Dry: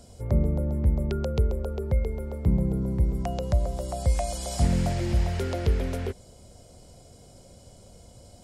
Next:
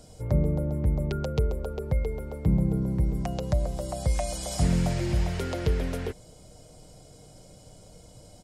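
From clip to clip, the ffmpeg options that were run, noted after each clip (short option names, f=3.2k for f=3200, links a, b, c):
-af "aecho=1:1:6.5:0.42"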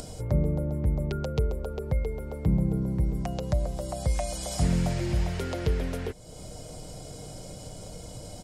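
-af "acompressor=mode=upward:threshold=-29dB:ratio=2.5,volume=-1dB"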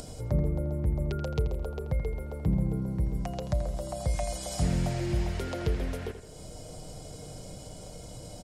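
-filter_complex "[0:a]asplit=2[a][b];[b]adelay=83,lowpass=f=3.8k:p=1,volume=-9.5dB,asplit=2[c][d];[d]adelay=83,lowpass=f=3.8k:p=1,volume=0.47,asplit=2[e][f];[f]adelay=83,lowpass=f=3.8k:p=1,volume=0.47,asplit=2[g][h];[h]adelay=83,lowpass=f=3.8k:p=1,volume=0.47,asplit=2[i][j];[j]adelay=83,lowpass=f=3.8k:p=1,volume=0.47[k];[a][c][e][g][i][k]amix=inputs=6:normalize=0,volume=-2.5dB"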